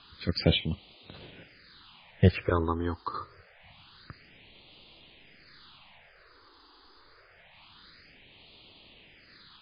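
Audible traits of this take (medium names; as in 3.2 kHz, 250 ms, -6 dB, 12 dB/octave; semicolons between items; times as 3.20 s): random-step tremolo, depth 85%; a quantiser's noise floor 10-bit, dither triangular; phasing stages 6, 0.26 Hz, lowest notch 160–1600 Hz; MP3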